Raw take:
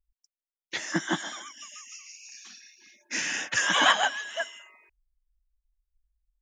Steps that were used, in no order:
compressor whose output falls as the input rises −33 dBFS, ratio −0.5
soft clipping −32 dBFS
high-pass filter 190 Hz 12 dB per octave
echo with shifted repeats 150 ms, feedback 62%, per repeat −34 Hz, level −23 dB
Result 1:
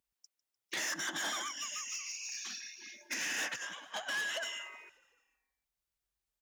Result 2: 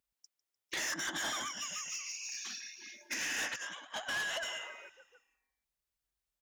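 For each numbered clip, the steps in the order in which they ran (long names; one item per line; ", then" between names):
compressor whose output falls as the input rises, then soft clipping, then echo with shifted repeats, then high-pass filter
echo with shifted repeats, then high-pass filter, then compressor whose output falls as the input rises, then soft clipping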